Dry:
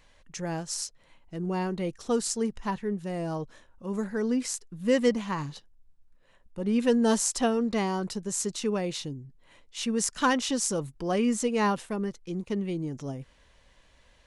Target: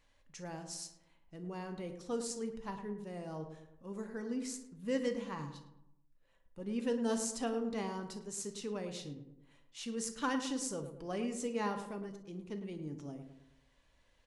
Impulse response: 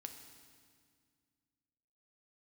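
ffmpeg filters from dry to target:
-filter_complex "[0:a]asplit=2[a][b];[b]adelay=107,lowpass=f=1.4k:p=1,volume=-8dB,asplit=2[c][d];[d]adelay=107,lowpass=f=1.4k:p=1,volume=0.49,asplit=2[e][f];[f]adelay=107,lowpass=f=1.4k:p=1,volume=0.49,asplit=2[g][h];[h]adelay=107,lowpass=f=1.4k:p=1,volume=0.49,asplit=2[i][j];[j]adelay=107,lowpass=f=1.4k:p=1,volume=0.49,asplit=2[k][l];[l]adelay=107,lowpass=f=1.4k:p=1,volume=0.49[m];[a][c][e][g][i][k][m]amix=inputs=7:normalize=0[n];[1:a]atrim=start_sample=2205,atrim=end_sample=3087[o];[n][o]afir=irnorm=-1:irlink=0,volume=-6dB"

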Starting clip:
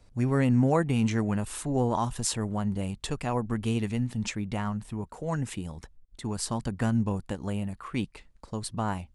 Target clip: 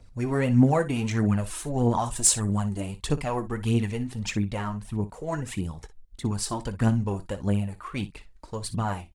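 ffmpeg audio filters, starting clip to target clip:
-filter_complex "[0:a]asettb=1/sr,asplit=3[a][b][c];[a]atrim=end=2.054[d];[b]atrim=start=2.05:end=2.8,asetpts=PTS-STARTPTS,afade=t=in:d=0.004:c=qsin,afade=t=out:st=0.746:d=0.004:c=qsin,equalizer=f=8k:w=1.6:g=10.5[e];[c]atrim=start=2.796[f];[d][e]acrossfade=d=0.004:c1=hsin:c2=qsin[g];[g][f]acrossfade=d=0.004:c1=qsin:c2=hsin,aphaser=in_gain=1:out_gain=1:delay=3.3:decay=0.56:speed=1.6:type=triangular,asplit=2[h][i];[i]aecho=0:1:20|59:0.188|0.178[j];[h][j]amix=inputs=2:normalize=0"

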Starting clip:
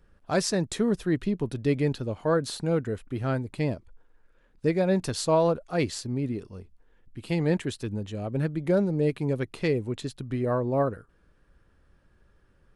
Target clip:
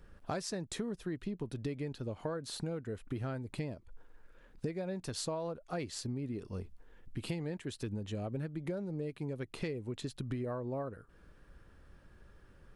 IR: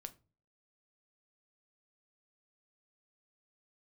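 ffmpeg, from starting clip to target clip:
-af "acompressor=threshold=-38dB:ratio=16,volume=3.5dB"

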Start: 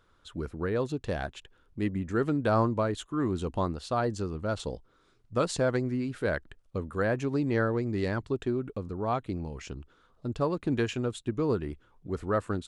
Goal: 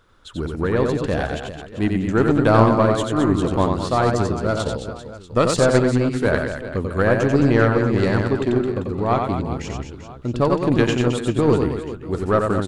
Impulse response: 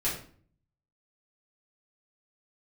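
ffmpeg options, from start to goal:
-af "aecho=1:1:90|216|392.4|639.4|985.1:0.631|0.398|0.251|0.158|0.1,acontrast=81,aeval=exprs='0.501*(cos(1*acos(clip(val(0)/0.501,-1,1)))-cos(1*PI/2))+0.0355*(cos(3*acos(clip(val(0)/0.501,-1,1)))-cos(3*PI/2))+0.0251*(cos(4*acos(clip(val(0)/0.501,-1,1)))-cos(4*PI/2))+0.00708*(cos(7*acos(clip(val(0)/0.501,-1,1)))-cos(7*PI/2))':c=same,volume=4dB"

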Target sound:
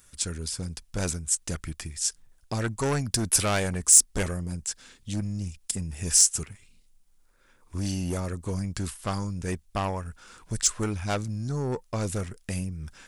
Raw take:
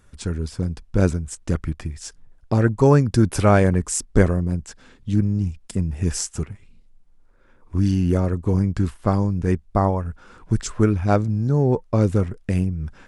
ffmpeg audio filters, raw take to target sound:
-af "asoftclip=type=tanh:threshold=-13.5dB,crystalizer=i=8.5:c=0,volume=-9dB"

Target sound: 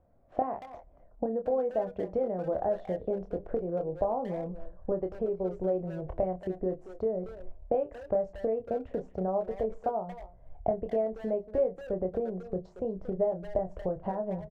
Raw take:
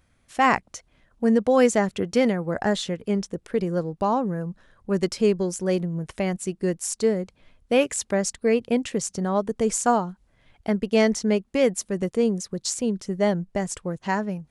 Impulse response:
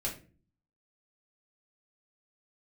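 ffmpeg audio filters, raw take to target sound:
-filter_complex "[0:a]agate=range=-7dB:threshold=-49dB:ratio=16:detection=peak,asubboost=boost=7:cutoff=74,acrossover=split=280[a][b];[a]alimiter=level_in=4dB:limit=-24dB:level=0:latency=1,volume=-4dB[c];[c][b]amix=inputs=2:normalize=0,acompressor=threshold=-36dB:ratio=20,lowpass=f=660:t=q:w=3.7,acontrast=38,asplit=2[d][e];[e]adelay=27,volume=-6.5dB[f];[d][f]amix=inputs=2:normalize=0,asplit=2[g][h];[h]adelay=230,highpass=300,lowpass=3.4k,asoftclip=type=hard:threshold=-27.5dB,volume=-12dB[i];[g][i]amix=inputs=2:normalize=0,asplit=2[j][k];[1:a]atrim=start_sample=2205,adelay=10[l];[k][l]afir=irnorm=-1:irlink=0,volume=-21.5dB[m];[j][m]amix=inputs=2:normalize=0,volume=-2dB"

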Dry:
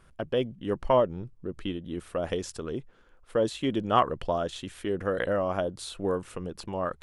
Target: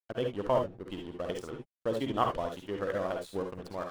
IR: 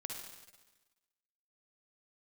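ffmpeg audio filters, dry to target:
-filter_complex "[0:a]aeval=exprs='sgn(val(0))*max(abs(val(0))-0.00891,0)':c=same,atempo=1.8[a];[1:a]atrim=start_sample=2205,atrim=end_sample=3969[b];[a][b]afir=irnorm=-1:irlink=0"

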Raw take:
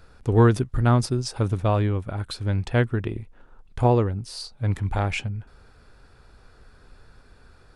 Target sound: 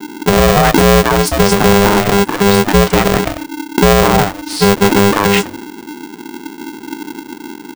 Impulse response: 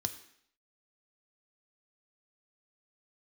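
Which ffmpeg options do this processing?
-filter_complex "[0:a]bass=f=250:g=5,treble=f=4k:g=0,acrossover=split=380|5000[a][b][c];[b]adelay=200[d];[c]adelay=230[e];[a][d][e]amix=inputs=3:normalize=0,adynamicequalizer=threshold=0.00562:dfrequency=3000:dqfactor=0.72:tfrequency=3000:tqfactor=0.72:attack=5:release=100:ratio=0.375:range=2.5:mode=cutabove:tftype=bell,acrossover=split=160[f][g];[f]acompressor=threshold=-28dB:ratio=6[h];[g]agate=range=-33dB:threshold=-46dB:ratio=3:detection=peak[i];[h][i]amix=inputs=2:normalize=0,asoftclip=type=tanh:threshold=-10.5dB,alimiter=level_in=18.5dB:limit=-1dB:release=50:level=0:latency=1,aeval=exprs='val(0)*sgn(sin(2*PI*300*n/s))':c=same,volume=-1dB"

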